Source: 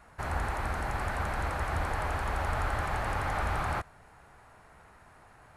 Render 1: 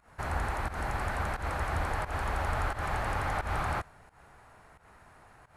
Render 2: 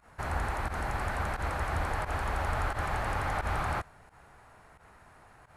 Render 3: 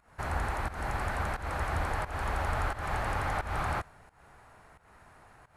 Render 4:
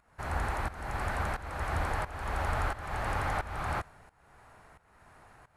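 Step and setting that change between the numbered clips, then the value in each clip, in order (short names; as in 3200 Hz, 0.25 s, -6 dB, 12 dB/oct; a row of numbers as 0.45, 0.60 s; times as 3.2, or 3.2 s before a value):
pump, release: 154, 85, 236, 503 ms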